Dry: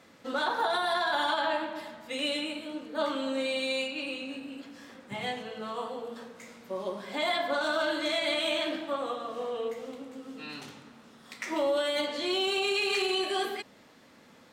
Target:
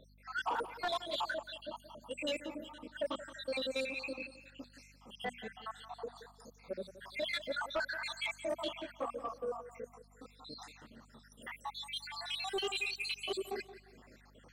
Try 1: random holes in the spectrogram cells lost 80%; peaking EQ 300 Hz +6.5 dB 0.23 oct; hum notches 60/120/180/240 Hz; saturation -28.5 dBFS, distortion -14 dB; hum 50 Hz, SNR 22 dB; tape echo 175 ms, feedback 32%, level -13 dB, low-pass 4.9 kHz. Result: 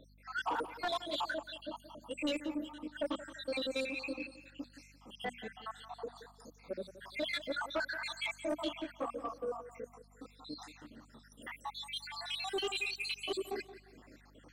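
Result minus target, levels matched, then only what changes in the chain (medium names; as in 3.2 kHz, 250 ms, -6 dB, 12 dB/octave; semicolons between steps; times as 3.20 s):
250 Hz band +5.5 dB
change: peaking EQ 300 Hz -4.5 dB 0.23 oct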